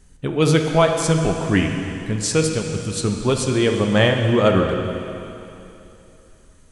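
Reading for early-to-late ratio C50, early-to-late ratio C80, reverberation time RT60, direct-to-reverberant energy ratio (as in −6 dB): 4.5 dB, 5.0 dB, 3.0 s, 3.0 dB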